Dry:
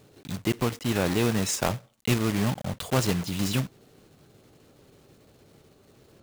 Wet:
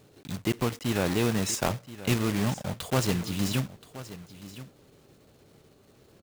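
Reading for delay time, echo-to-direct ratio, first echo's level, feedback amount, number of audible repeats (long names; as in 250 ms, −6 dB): 1,026 ms, −15.5 dB, −15.5 dB, repeats not evenly spaced, 1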